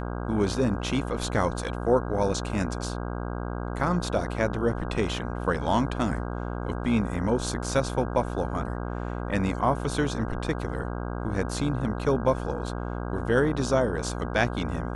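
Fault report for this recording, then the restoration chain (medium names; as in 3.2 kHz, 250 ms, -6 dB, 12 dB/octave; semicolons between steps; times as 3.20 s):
buzz 60 Hz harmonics 27 -32 dBFS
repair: de-hum 60 Hz, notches 27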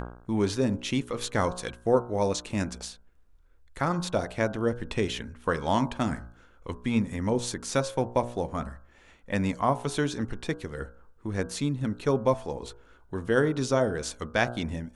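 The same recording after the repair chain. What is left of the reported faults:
nothing left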